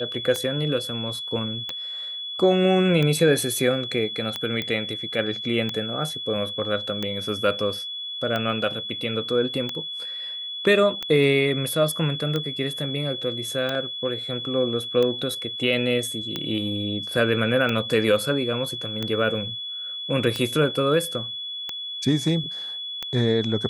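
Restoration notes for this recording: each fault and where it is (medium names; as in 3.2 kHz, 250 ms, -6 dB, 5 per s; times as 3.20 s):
tick 45 rpm -13 dBFS
whine 3.4 kHz -30 dBFS
4.62 s: pop -14 dBFS
13.75 s: dropout 2.6 ms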